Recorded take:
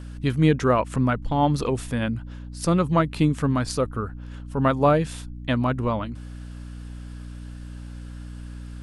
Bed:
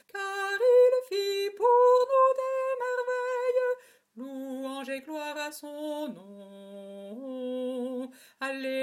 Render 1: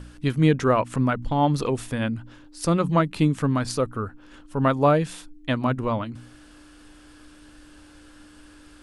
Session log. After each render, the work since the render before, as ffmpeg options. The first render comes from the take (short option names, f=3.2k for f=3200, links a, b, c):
-af "bandreject=f=60:t=h:w=4,bandreject=f=120:t=h:w=4,bandreject=f=180:t=h:w=4,bandreject=f=240:t=h:w=4"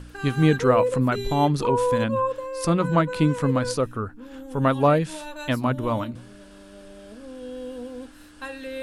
-filter_complex "[1:a]volume=-2.5dB[a];[0:a][a]amix=inputs=2:normalize=0"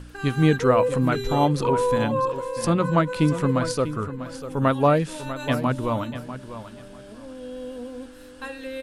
-af "aecho=1:1:645|1290|1935:0.251|0.0553|0.0122"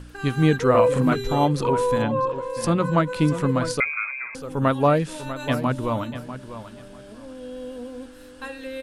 -filter_complex "[0:a]asettb=1/sr,asplit=3[a][b][c];[a]atrim=end=0.704[d];[b]atrim=start=0.7:end=1.14,asetpts=PTS-STARTPTS,afade=t=in:d=0.004:c=qsin,afade=t=out:st=0.436:d=0.004:c=qsin,asplit=2[e][f];[f]adelay=44,volume=-3dB[g];[e][g]amix=inputs=2:normalize=0,atrim=end_sample=19404[h];[c]atrim=start=1.136[i];[d][h]acrossfade=d=0.004:c1=hsin:c2=qsin[j];[j][i]acrossfade=d=0.004:c1=qsin:c2=hsin,asettb=1/sr,asplit=3[k][l][m];[k]atrim=end=2.024[n];[l]atrim=start=2.02:end=2.5,asetpts=PTS-STARTPTS,afade=t=in:d=0.004:c=qsin,afade=t=out:st=0.476:d=0.004:c=qsin,aemphasis=mode=reproduction:type=50fm[o];[m]atrim=start=2.496[p];[n][o]acrossfade=d=0.004:c1=hsin:c2=qsin[q];[q][p]acrossfade=d=0.004:c1=qsin:c2=hsin,asettb=1/sr,asplit=3[r][s][t];[r]atrim=end=3.804[u];[s]atrim=start=3.8:end=4.35,asetpts=PTS-STARTPTS,afade=t=in:d=0.004:c=qsin,afade=t=out:st=0.546:d=0.004:c=qsin,lowpass=f=2.2k:t=q:w=0.5098,lowpass=f=2.2k:t=q:w=0.6013,lowpass=f=2.2k:t=q:w=0.9,lowpass=f=2.2k:t=q:w=2.563,afreqshift=-2600[v];[t]atrim=start=4.346[w];[u][v]acrossfade=d=0.004:c1=hsin:c2=qsin[x];[x][w]acrossfade=d=0.004:c1=qsin:c2=hsin"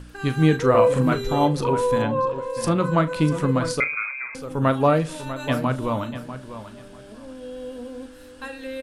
-filter_complex "[0:a]asplit=2[a][b];[b]adelay=38,volume=-13dB[c];[a][c]amix=inputs=2:normalize=0,asplit=2[d][e];[e]adelay=73,lowpass=f=2.7k:p=1,volume=-22dB,asplit=2[f][g];[g]adelay=73,lowpass=f=2.7k:p=1,volume=0.47,asplit=2[h][i];[i]adelay=73,lowpass=f=2.7k:p=1,volume=0.47[j];[d][f][h][j]amix=inputs=4:normalize=0"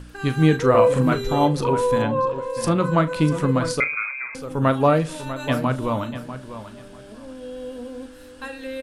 -af "volume=1dB"